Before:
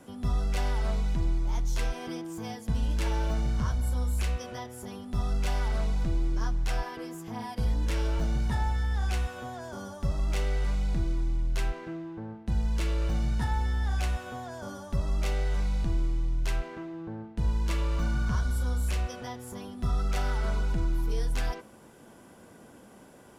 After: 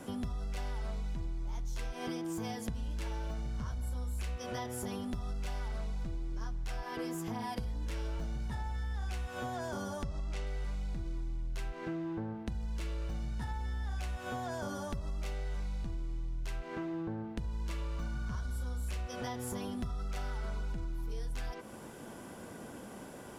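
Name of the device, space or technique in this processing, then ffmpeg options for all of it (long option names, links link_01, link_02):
serial compression, peaks first: -filter_complex "[0:a]asettb=1/sr,asplit=3[link_01][link_02][link_03];[link_01]atrim=end=10.034[link_04];[link_02]atrim=start=10.03:end=10.47,asetpts=PTS-STARTPTS,afade=type=in:duration=0.004:curve=qsin,afade=type=out:start_time=0.436:duration=0.004:curve=qsin,lowpass=8300[link_05];[link_03]atrim=start=10.466[link_06];[link_04][link_05]acrossfade=duration=0.004:curve1=hsin:curve2=qsin[link_07];[link_07][link_06]acrossfade=duration=0.004:curve1=qsin:curve2=hsin,acompressor=threshold=-36dB:ratio=6,acompressor=threshold=-40dB:ratio=3,volume=5dB"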